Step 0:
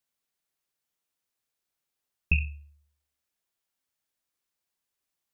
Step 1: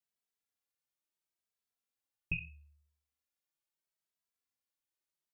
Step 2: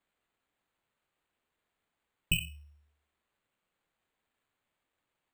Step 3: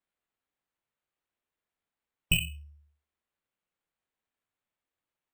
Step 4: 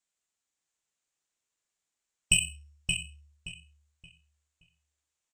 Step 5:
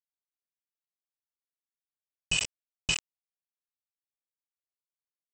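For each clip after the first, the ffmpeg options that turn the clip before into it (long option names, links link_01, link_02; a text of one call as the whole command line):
ffmpeg -i in.wav -filter_complex "[0:a]asplit=2[link_01][link_02];[link_02]adelay=2.7,afreqshift=0.76[link_03];[link_01][link_03]amix=inputs=2:normalize=1,volume=-6dB" out.wav
ffmpeg -i in.wav -af "acrusher=samples=8:mix=1:aa=0.000001,volume=7dB" out.wav
ffmpeg -i in.wav -filter_complex "[0:a]afftdn=noise_reduction=14:noise_floor=-60,asplit=2[link_01][link_02];[link_02]asoftclip=type=hard:threshold=-31.5dB,volume=-5dB[link_03];[link_01][link_03]amix=inputs=2:normalize=0,volume=2dB" out.wav
ffmpeg -i in.wav -filter_complex "[0:a]lowpass=frequency=7200:width_type=q:width=3.2,highshelf=frequency=2900:gain=11.5,asplit=2[link_01][link_02];[link_02]adelay=574,lowpass=frequency=3700:poles=1,volume=-3dB,asplit=2[link_03][link_04];[link_04]adelay=574,lowpass=frequency=3700:poles=1,volume=0.3,asplit=2[link_05][link_06];[link_06]adelay=574,lowpass=frequency=3700:poles=1,volume=0.3,asplit=2[link_07][link_08];[link_08]adelay=574,lowpass=frequency=3700:poles=1,volume=0.3[link_09];[link_03][link_05][link_07][link_09]amix=inputs=4:normalize=0[link_10];[link_01][link_10]amix=inputs=2:normalize=0,volume=-5dB" out.wav
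ffmpeg -i in.wav -af "aresample=16000,acrusher=bits=4:mix=0:aa=0.000001,aresample=44100,highshelf=frequency=5100:gain=11,alimiter=limit=-15dB:level=0:latency=1:release=74" out.wav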